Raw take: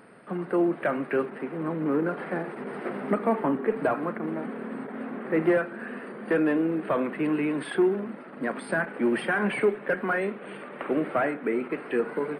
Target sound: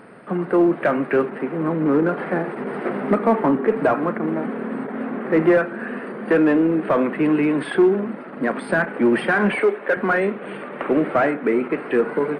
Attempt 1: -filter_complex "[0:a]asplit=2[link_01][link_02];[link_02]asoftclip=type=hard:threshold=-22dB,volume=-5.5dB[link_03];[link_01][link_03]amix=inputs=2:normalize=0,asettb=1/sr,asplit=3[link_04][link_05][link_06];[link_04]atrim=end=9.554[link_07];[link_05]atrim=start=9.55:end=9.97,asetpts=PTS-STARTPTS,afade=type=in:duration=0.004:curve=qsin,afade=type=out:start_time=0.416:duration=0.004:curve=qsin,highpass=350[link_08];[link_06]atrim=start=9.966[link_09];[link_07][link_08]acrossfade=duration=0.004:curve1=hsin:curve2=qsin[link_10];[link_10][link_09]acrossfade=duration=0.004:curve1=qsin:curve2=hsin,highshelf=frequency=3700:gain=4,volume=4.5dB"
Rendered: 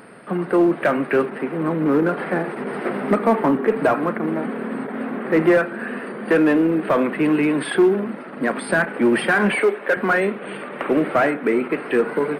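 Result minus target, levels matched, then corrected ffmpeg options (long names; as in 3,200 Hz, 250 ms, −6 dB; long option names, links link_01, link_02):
8,000 Hz band +9.0 dB
-filter_complex "[0:a]asplit=2[link_01][link_02];[link_02]asoftclip=type=hard:threshold=-22dB,volume=-5.5dB[link_03];[link_01][link_03]amix=inputs=2:normalize=0,asettb=1/sr,asplit=3[link_04][link_05][link_06];[link_04]atrim=end=9.554[link_07];[link_05]atrim=start=9.55:end=9.97,asetpts=PTS-STARTPTS,afade=type=in:duration=0.004:curve=qsin,afade=type=out:start_time=0.416:duration=0.004:curve=qsin,highpass=350[link_08];[link_06]atrim=start=9.966[link_09];[link_07][link_08]acrossfade=duration=0.004:curve1=hsin:curve2=qsin[link_10];[link_10][link_09]acrossfade=duration=0.004:curve1=qsin:curve2=hsin,highshelf=frequency=3700:gain=-7,volume=4.5dB"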